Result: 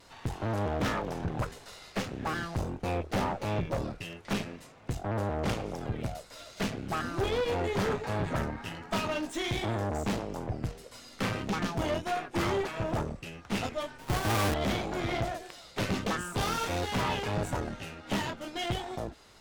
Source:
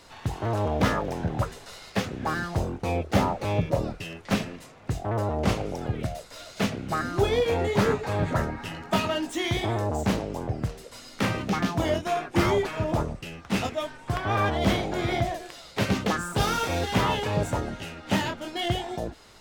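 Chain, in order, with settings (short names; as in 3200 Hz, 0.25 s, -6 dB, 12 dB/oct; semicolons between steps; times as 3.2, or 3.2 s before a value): 13.98–14.54 half-waves squared off; vibrato 1.5 Hz 42 cents; tube stage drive 25 dB, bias 0.75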